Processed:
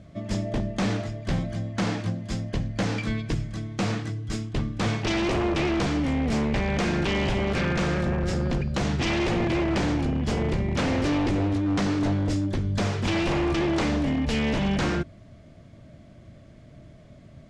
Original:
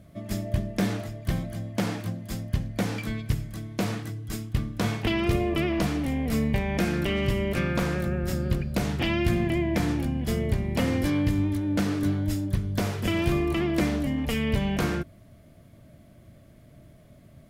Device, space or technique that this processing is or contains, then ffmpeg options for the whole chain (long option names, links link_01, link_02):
synthesiser wavefolder: -af "aeval=exprs='0.075*(abs(mod(val(0)/0.075+3,4)-2)-1)':channel_layout=same,lowpass=frequency=7300:width=0.5412,lowpass=frequency=7300:width=1.3066,volume=3.5dB"